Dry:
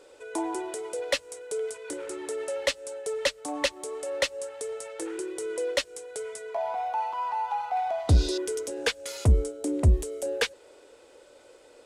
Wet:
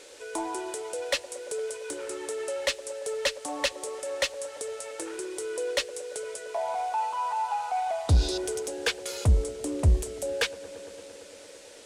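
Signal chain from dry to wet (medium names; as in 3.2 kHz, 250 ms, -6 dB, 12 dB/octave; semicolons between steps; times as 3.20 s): band-stop 2 kHz, Q 25; feedback echo behind a band-pass 114 ms, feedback 83%, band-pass 460 Hz, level -16 dB; in parallel at -5 dB: saturation -24.5 dBFS, distortion -7 dB; on the sum: dynamic bell 290 Hz, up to -5 dB, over -38 dBFS, Q 0.76; on a send at -22 dB: reverberation, pre-delay 3 ms; on the sum: band noise 1.5–9.3 kHz -51 dBFS; trim -2 dB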